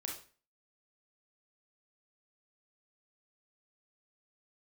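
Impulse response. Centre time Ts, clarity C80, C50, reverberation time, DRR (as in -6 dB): 32 ms, 11.0 dB, 5.0 dB, 0.40 s, -0.5 dB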